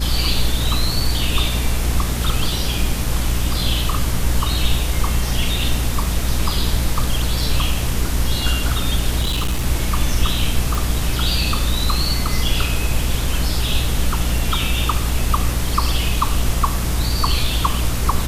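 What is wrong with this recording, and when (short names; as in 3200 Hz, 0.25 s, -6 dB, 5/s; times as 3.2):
hum 60 Hz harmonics 5 -22 dBFS
9.21–9.65 clipped -15.5 dBFS
10.75 pop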